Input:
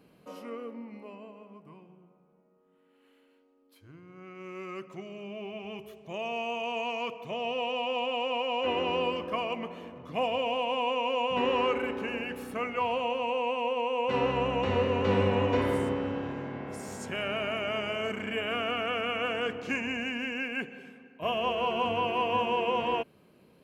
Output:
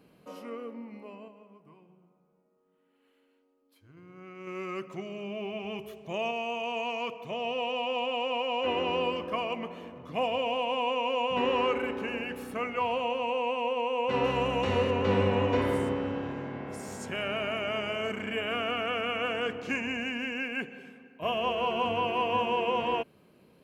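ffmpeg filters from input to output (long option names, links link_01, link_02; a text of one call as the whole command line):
ffmpeg -i in.wav -filter_complex "[0:a]asettb=1/sr,asplit=3[link_01][link_02][link_03];[link_01]atrim=end=1.284[link_04];[link_02]atrim=start=1.28:end=3.97,asetpts=PTS-STARTPTS,afade=type=in:duration=0.004:curve=qsin,afade=type=out:start_time=2.686:duration=0.004:curve=qsin,flanger=delay=0.9:depth=2:regen=-82:speed=1.2:shape=triangular[link_05];[link_03]atrim=start=3.966[link_06];[link_04][link_05]acrossfade=duration=0.004:curve1=hsin:curve2=qsin[link_07];[link_07][link_06]acrossfade=duration=0.004:curve1=qsin:curve2=hsin,asettb=1/sr,asplit=3[link_08][link_09][link_10];[link_08]atrim=end=14.244[link_11];[link_09]atrim=start=14.24:end=14.91,asetpts=PTS-STARTPTS,afade=type=in:duration=0.004:curve=qsin,afade=type=out:start_time=0.666:duration=0.004:curve=qsin,highshelf=frequency=5800:gain=11.5[link_12];[link_10]atrim=start=14.906[link_13];[link_11][link_12]acrossfade=duration=0.004:curve1=hsin:curve2=qsin[link_14];[link_14][link_13]acrossfade=duration=0.004:curve1=qsin:curve2=hsin,asplit=3[link_15][link_16][link_17];[link_15]atrim=end=4.472[link_18];[link_16]atrim=start=4.468:end=6.312,asetpts=PTS-STARTPTS,volume=3.5dB[link_19];[link_17]atrim=start=6.308[link_20];[link_18][link_19]acrossfade=duration=0.004:curve1=hsin:curve2=hsin[link_21];[link_21][link_20]acrossfade=duration=0.004:curve1=hsin:curve2=hsin" out.wav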